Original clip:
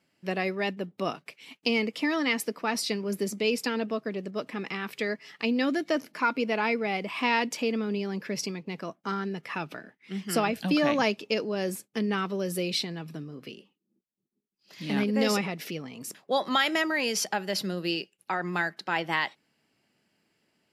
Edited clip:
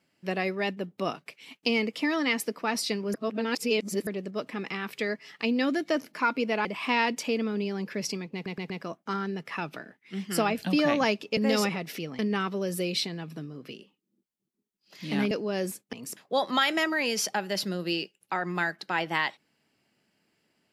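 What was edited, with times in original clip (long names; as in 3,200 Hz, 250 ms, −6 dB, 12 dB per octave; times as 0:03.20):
0:03.14–0:04.07: reverse
0:06.65–0:06.99: remove
0:08.68: stutter 0.12 s, 4 plays
0:11.35–0:11.97: swap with 0:15.09–0:15.91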